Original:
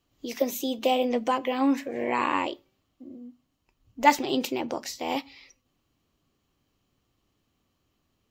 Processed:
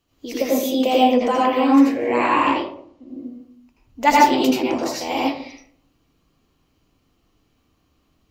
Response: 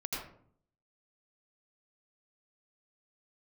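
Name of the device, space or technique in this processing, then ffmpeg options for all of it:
bathroom: -filter_complex "[0:a]asettb=1/sr,asplit=3[a][b][c];[a]atrim=end=2.524[d];[b]atrim=start=2.52:end=3.09,asetpts=PTS-STARTPTS,afade=t=in:d=0.004:c=qsin,afade=t=out:st=0.566:d=0.004:c=qsin,lowpass=7.2k[e];[c]atrim=start=3.086[f];[d][e]acrossfade=d=0.004:c1=hsin:c2=qsin[g];[g][f]acrossfade=d=0.004:c1=qsin:c2=hsin[h];[1:a]atrim=start_sample=2205[i];[h][i]afir=irnorm=-1:irlink=0,volume=5.5dB"

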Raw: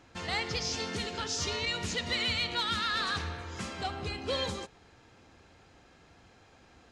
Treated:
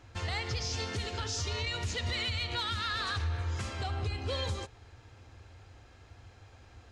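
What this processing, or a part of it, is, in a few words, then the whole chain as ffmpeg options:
car stereo with a boomy subwoofer: -af "lowshelf=f=130:t=q:w=3:g=7,alimiter=level_in=1.5dB:limit=-24dB:level=0:latency=1:release=73,volume=-1.5dB"

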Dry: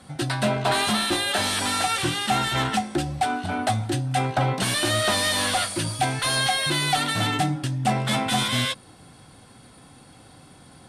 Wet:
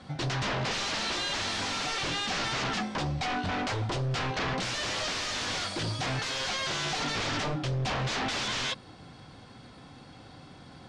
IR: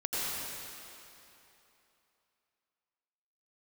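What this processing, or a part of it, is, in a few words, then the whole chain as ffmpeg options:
synthesiser wavefolder: -af "aeval=exprs='0.0531*(abs(mod(val(0)/0.0531+3,4)-2)-1)':c=same,lowpass=f=6.1k:w=0.5412,lowpass=f=6.1k:w=1.3066"

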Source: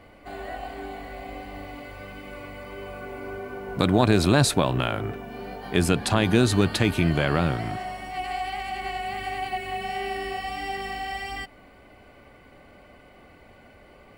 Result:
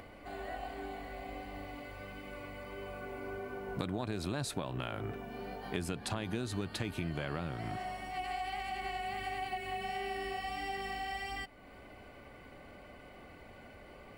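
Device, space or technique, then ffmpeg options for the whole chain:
upward and downward compression: -af "acompressor=mode=upward:threshold=-39dB:ratio=2.5,acompressor=threshold=-27dB:ratio=5,volume=-6.5dB"

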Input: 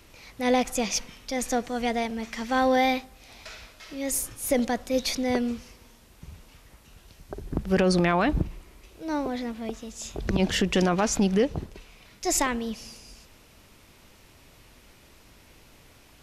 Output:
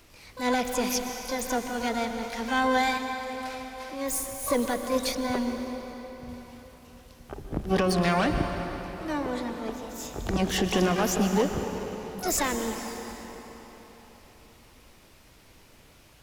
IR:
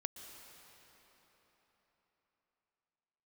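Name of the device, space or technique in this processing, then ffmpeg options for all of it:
shimmer-style reverb: -filter_complex "[0:a]asplit=2[a][b];[b]asetrate=88200,aresample=44100,atempo=0.5,volume=-7dB[c];[a][c]amix=inputs=2:normalize=0[d];[1:a]atrim=start_sample=2205[e];[d][e]afir=irnorm=-1:irlink=0,asettb=1/sr,asplit=3[f][g][h];[f]atrim=end=5.124[i];[g]atrim=start=5.12:end=6.29,asetpts=PTS-STARTPTS,afade=t=in:d=0.004:c=qsin,afade=t=out:st=1.166:d=0.004:c=qsin,equalizer=f=9.1k:t=o:w=2.4:g=-4.5[j];[h]atrim=start=6.286[k];[i][j]acrossfade=d=0.004:c1=hsin:c2=qsin[l];[l][k]acrossfade=d=0.004:c1=qsin:c2=hsin"

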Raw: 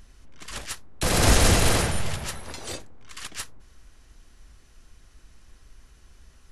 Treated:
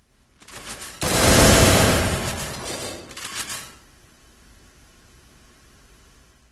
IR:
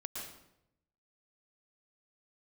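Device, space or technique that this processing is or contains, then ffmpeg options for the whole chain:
far-field microphone of a smart speaker: -filter_complex "[1:a]atrim=start_sample=2205[a];[0:a][a]afir=irnorm=-1:irlink=0,highpass=89,dynaudnorm=f=510:g=3:m=7dB,volume=1.5dB" -ar 48000 -c:a libopus -b:a 20k

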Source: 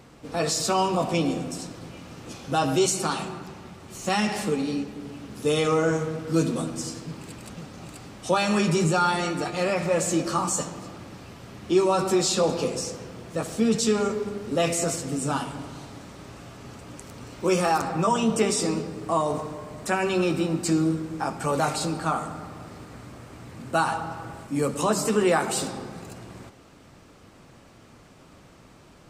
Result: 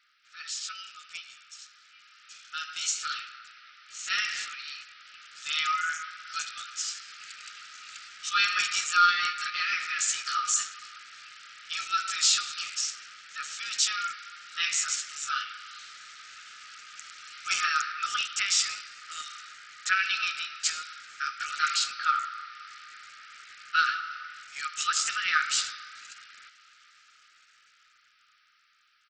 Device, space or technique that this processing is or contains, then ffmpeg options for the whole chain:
Bluetooth headset: -af "afftfilt=real='re*between(b*sr/4096,1200,9000)':imag='im*between(b*sr/4096,1200,9000)':win_size=4096:overlap=0.75,highpass=130,dynaudnorm=f=560:g=11:m=15dB,aresample=16000,aresample=44100,volume=-8dB" -ar 44100 -c:a sbc -b:a 64k

